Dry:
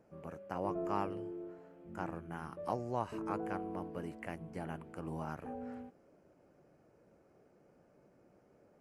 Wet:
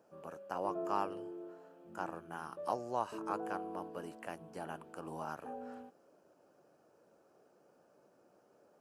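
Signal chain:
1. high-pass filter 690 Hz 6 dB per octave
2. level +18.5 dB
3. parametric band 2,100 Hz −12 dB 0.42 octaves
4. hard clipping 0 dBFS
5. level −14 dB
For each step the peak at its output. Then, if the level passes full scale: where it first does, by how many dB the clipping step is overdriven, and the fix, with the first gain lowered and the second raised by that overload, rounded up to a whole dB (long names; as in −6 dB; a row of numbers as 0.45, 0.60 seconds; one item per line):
−23.5, −5.0, −5.5, −5.5, −19.5 dBFS
no step passes full scale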